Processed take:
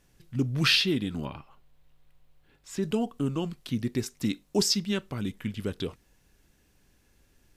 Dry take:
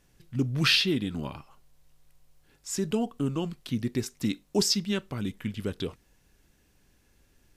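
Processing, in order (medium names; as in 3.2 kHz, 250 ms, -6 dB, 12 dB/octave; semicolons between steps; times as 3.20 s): 1.25–2.83 s: high-order bell 8 kHz -10 dB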